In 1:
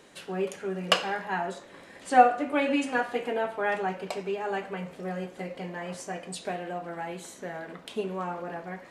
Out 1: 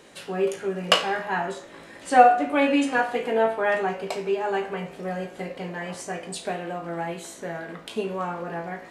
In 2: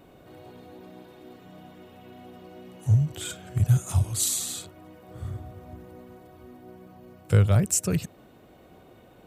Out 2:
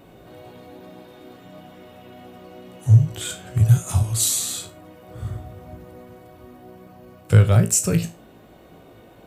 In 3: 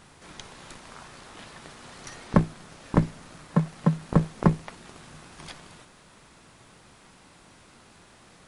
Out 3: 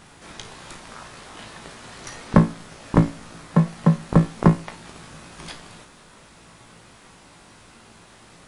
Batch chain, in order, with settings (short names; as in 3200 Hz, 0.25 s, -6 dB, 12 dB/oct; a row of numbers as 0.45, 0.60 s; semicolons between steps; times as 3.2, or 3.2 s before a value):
resonator 56 Hz, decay 0.28 s, harmonics all, mix 80%; normalise peaks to -1.5 dBFS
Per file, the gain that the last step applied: +9.5, +10.5, +10.0 dB